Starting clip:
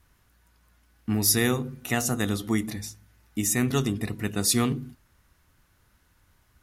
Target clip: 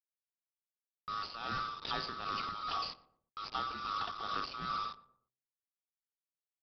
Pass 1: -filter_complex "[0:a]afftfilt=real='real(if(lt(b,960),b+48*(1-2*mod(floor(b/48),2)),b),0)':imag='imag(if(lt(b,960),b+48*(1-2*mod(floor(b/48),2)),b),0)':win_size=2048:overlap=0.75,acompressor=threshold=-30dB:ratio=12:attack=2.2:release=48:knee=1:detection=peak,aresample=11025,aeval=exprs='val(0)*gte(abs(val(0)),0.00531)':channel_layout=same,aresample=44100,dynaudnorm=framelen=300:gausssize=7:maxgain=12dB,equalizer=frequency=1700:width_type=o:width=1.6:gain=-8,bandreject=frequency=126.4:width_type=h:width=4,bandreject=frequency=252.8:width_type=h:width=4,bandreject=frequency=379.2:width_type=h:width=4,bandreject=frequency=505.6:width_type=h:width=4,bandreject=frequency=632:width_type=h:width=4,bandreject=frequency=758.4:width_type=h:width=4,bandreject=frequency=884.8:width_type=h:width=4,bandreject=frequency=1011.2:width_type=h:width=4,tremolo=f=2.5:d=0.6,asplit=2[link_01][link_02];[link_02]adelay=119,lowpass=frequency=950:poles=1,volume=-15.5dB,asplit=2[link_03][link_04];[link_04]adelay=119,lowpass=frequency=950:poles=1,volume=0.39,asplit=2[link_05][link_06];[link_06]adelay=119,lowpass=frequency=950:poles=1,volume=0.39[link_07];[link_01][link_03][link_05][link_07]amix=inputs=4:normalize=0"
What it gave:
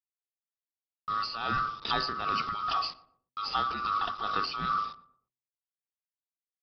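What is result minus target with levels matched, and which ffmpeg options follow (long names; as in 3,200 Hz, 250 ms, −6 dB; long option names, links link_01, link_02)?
downward compressor: peak gain reduction −8 dB
-filter_complex "[0:a]afftfilt=real='real(if(lt(b,960),b+48*(1-2*mod(floor(b/48),2)),b),0)':imag='imag(if(lt(b,960),b+48*(1-2*mod(floor(b/48),2)),b),0)':win_size=2048:overlap=0.75,acompressor=threshold=-38.5dB:ratio=12:attack=2.2:release=48:knee=1:detection=peak,aresample=11025,aeval=exprs='val(0)*gte(abs(val(0)),0.00531)':channel_layout=same,aresample=44100,dynaudnorm=framelen=300:gausssize=7:maxgain=12dB,equalizer=frequency=1700:width_type=o:width=1.6:gain=-8,bandreject=frequency=126.4:width_type=h:width=4,bandreject=frequency=252.8:width_type=h:width=4,bandreject=frequency=379.2:width_type=h:width=4,bandreject=frequency=505.6:width_type=h:width=4,bandreject=frequency=632:width_type=h:width=4,bandreject=frequency=758.4:width_type=h:width=4,bandreject=frequency=884.8:width_type=h:width=4,bandreject=frequency=1011.2:width_type=h:width=4,tremolo=f=2.5:d=0.6,asplit=2[link_01][link_02];[link_02]adelay=119,lowpass=frequency=950:poles=1,volume=-15.5dB,asplit=2[link_03][link_04];[link_04]adelay=119,lowpass=frequency=950:poles=1,volume=0.39,asplit=2[link_05][link_06];[link_06]adelay=119,lowpass=frequency=950:poles=1,volume=0.39[link_07];[link_01][link_03][link_05][link_07]amix=inputs=4:normalize=0"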